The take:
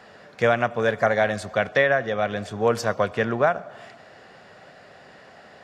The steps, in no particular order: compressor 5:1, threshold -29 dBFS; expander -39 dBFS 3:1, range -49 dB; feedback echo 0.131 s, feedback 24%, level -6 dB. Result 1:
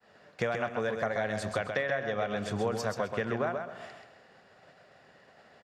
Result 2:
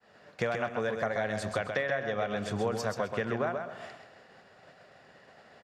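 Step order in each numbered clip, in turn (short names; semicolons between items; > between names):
compressor > expander > feedback echo; compressor > feedback echo > expander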